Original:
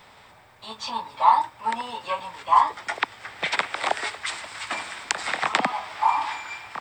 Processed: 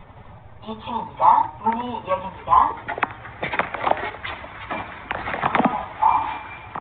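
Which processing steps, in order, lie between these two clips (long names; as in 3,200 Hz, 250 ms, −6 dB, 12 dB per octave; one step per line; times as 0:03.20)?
spectral magnitudes quantised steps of 15 dB
spectral tilt −4 dB per octave
in parallel at −0.5 dB: output level in coarse steps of 12 dB
on the sum: hum removal 153.9 Hz, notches 12
on a send: single-tap delay 78 ms −17.5 dB
on the sum: downsampling to 8,000 Hz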